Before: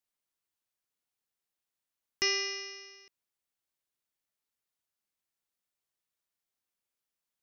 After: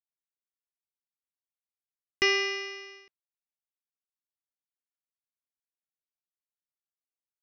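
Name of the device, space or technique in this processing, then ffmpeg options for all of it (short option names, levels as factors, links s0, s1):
hearing-loss simulation: -af "lowpass=3100,agate=range=0.0224:threshold=0.00178:ratio=3:detection=peak,volume=2.51"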